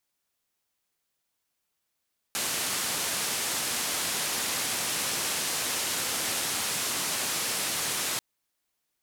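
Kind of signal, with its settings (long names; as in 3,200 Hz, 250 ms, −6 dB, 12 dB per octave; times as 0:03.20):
band-limited noise 110–11,000 Hz, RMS −30 dBFS 5.84 s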